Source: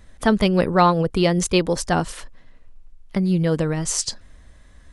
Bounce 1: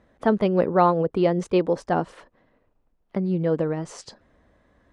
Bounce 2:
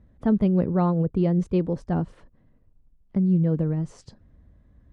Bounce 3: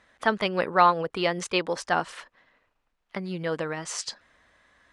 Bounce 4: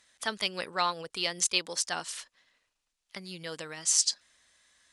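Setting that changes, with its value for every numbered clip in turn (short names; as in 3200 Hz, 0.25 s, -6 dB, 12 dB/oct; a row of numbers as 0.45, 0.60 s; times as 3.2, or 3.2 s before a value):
band-pass, frequency: 490, 140, 1500, 5800 Hz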